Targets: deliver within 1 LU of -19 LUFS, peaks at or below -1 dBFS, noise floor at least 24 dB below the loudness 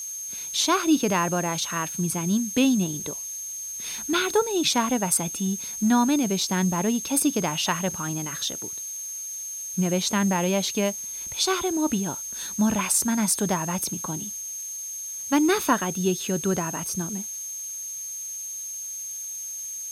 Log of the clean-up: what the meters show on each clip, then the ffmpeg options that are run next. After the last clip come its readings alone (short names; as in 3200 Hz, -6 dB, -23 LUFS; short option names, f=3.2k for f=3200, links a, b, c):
steady tone 6400 Hz; tone level -32 dBFS; noise floor -35 dBFS; noise floor target -49 dBFS; loudness -25.0 LUFS; peak -8.5 dBFS; loudness target -19.0 LUFS
-> -af "bandreject=f=6.4k:w=30"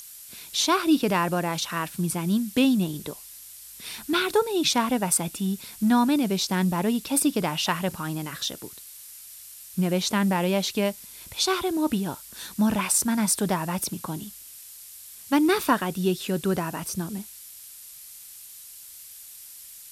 steady tone none; noise floor -45 dBFS; noise floor target -49 dBFS
-> -af "afftdn=nr=6:nf=-45"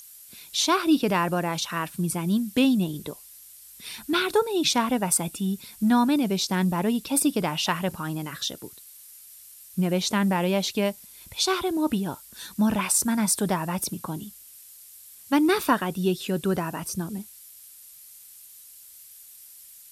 noise floor -48 dBFS; noise floor target -49 dBFS
-> -af "afftdn=nr=6:nf=-48"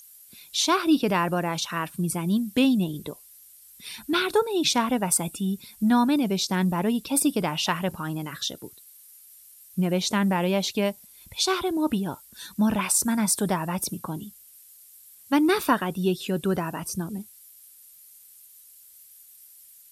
noise floor -52 dBFS; loudness -25.0 LUFS; peak -9.0 dBFS; loudness target -19.0 LUFS
-> -af "volume=6dB"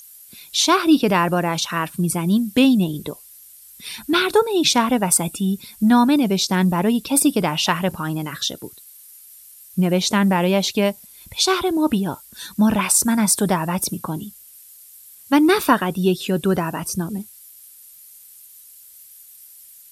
loudness -19.0 LUFS; peak -3.0 dBFS; noise floor -46 dBFS